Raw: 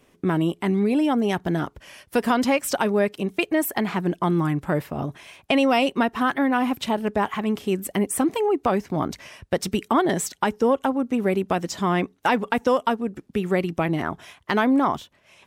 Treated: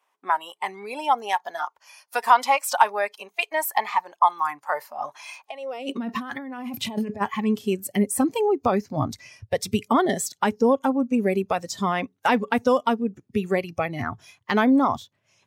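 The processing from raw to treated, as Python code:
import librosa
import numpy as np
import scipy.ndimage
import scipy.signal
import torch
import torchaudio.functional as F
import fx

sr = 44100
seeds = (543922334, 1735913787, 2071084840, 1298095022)

y = fx.noise_reduce_blind(x, sr, reduce_db=13)
y = fx.over_compress(y, sr, threshold_db=-32.0, ratio=-1.0, at=(5.0, 7.2), fade=0.02)
y = fx.filter_sweep_highpass(y, sr, from_hz=910.0, to_hz=110.0, start_s=5.45, end_s=6.31, q=3.8)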